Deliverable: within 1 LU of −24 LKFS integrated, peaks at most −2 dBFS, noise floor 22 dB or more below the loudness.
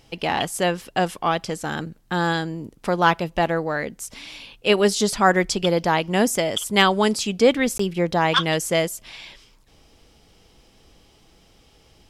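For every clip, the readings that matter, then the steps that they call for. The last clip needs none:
number of dropouts 1; longest dropout 14 ms; integrated loudness −21.5 LKFS; sample peak −3.0 dBFS; target loudness −24.0 LKFS
→ repair the gap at 0:07.78, 14 ms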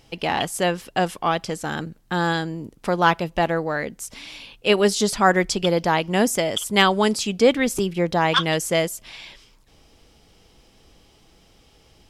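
number of dropouts 0; integrated loudness −21.5 LKFS; sample peak −3.0 dBFS; target loudness −24.0 LKFS
→ level −2.5 dB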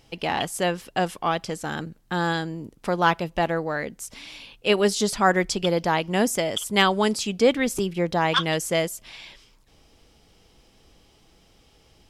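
integrated loudness −24.0 LKFS; sample peak −5.5 dBFS; background noise floor −59 dBFS

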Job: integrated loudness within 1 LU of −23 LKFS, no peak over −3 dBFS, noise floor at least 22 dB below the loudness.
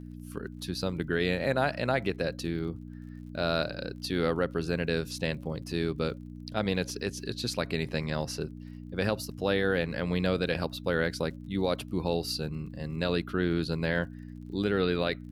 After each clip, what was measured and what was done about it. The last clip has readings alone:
crackle rate 39 per second; mains hum 60 Hz; hum harmonics up to 300 Hz; level of the hum −41 dBFS; integrated loudness −31.0 LKFS; sample peak −14.5 dBFS; target loudness −23.0 LKFS
→ click removal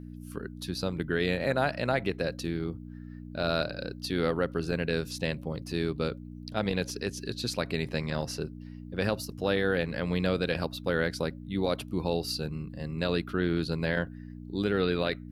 crackle rate 0.59 per second; mains hum 60 Hz; hum harmonics up to 300 Hz; level of the hum −41 dBFS
→ hum removal 60 Hz, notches 5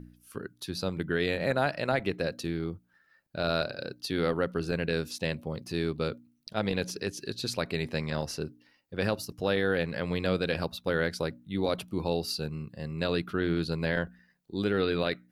mains hum none found; integrated loudness −31.5 LKFS; sample peak −14.0 dBFS; target loudness −23.0 LKFS
→ level +8.5 dB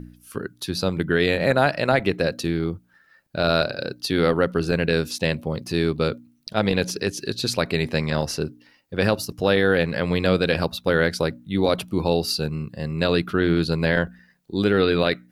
integrated loudness −23.0 LKFS; sample peak −5.5 dBFS; background noise floor −59 dBFS

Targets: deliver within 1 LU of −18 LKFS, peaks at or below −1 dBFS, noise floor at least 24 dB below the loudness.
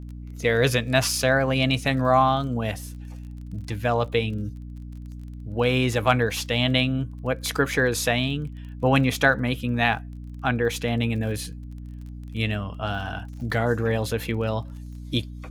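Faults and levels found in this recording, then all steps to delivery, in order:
crackle rate 27 per second; mains hum 60 Hz; hum harmonics up to 300 Hz; level of the hum −36 dBFS; integrated loudness −24.0 LKFS; sample peak −4.5 dBFS; target loudness −18.0 LKFS
→ click removal
hum removal 60 Hz, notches 5
level +6 dB
brickwall limiter −1 dBFS

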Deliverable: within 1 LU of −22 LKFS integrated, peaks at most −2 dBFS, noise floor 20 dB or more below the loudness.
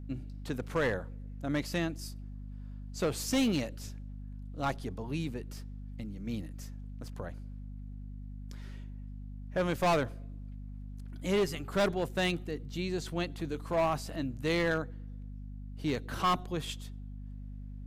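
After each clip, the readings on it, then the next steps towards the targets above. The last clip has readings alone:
share of clipped samples 1.4%; peaks flattened at −23.5 dBFS; mains hum 50 Hz; hum harmonics up to 250 Hz; level of the hum −40 dBFS; integrated loudness −33.5 LKFS; sample peak −23.5 dBFS; target loudness −22.0 LKFS
→ clipped peaks rebuilt −23.5 dBFS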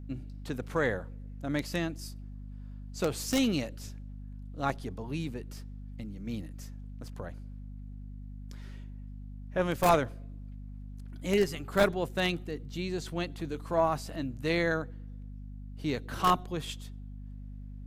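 share of clipped samples 0.0%; mains hum 50 Hz; hum harmonics up to 250 Hz; level of the hum −40 dBFS
→ hum removal 50 Hz, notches 5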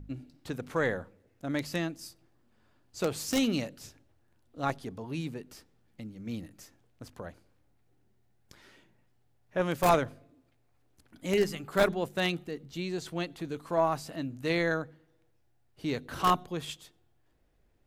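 mains hum none found; integrated loudness −32.0 LKFS; sample peak −13.5 dBFS; target loudness −22.0 LKFS
→ level +10 dB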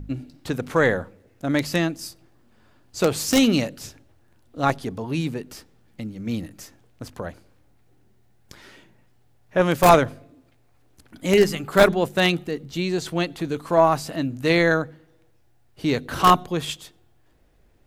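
integrated loudness −22.0 LKFS; sample peak −3.5 dBFS; background noise floor −58 dBFS

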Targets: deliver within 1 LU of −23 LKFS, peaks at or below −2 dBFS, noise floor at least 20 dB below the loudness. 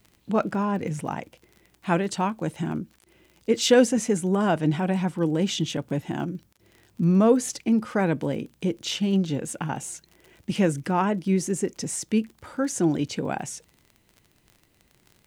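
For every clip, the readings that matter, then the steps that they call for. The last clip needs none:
crackle rate 34 per second; integrated loudness −25.0 LKFS; sample peak −6.5 dBFS; target loudness −23.0 LKFS
→ click removal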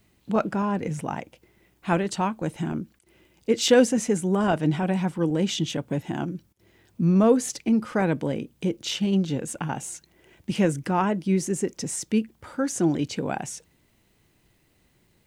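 crackle rate 0.20 per second; integrated loudness −25.0 LKFS; sample peak −6.5 dBFS; target loudness −23.0 LKFS
→ level +2 dB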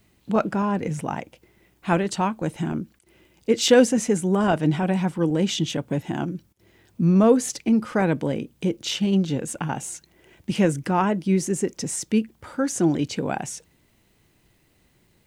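integrated loudness −23.0 LKFS; sample peak −4.5 dBFS; background noise floor −63 dBFS

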